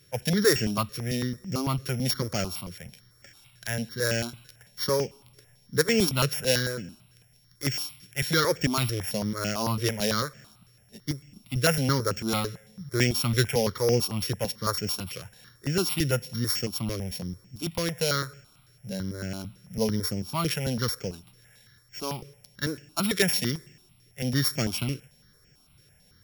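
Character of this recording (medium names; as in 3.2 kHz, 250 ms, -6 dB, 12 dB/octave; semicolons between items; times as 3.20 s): a buzz of ramps at a fixed pitch in blocks of 8 samples; notches that jump at a steady rate 9 Hz 220–3900 Hz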